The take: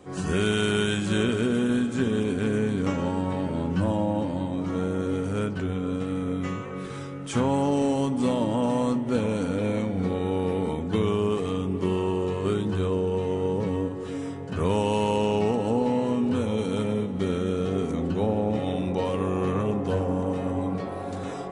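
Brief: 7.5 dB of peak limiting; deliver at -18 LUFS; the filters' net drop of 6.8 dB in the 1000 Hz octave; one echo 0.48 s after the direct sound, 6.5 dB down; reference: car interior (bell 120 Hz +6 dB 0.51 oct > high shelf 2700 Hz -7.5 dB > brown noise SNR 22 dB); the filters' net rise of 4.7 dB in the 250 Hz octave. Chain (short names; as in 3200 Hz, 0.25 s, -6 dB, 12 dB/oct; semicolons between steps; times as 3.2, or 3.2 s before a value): bell 250 Hz +5.5 dB; bell 1000 Hz -8 dB; limiter -18 dBFS; bell 120 Hz +6 dB 0.51 oct; high shelf 2700 Hz -7.5 dB; echo 0.48 s -6.5 dB; brown noise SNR 22 dB; gain +7 dB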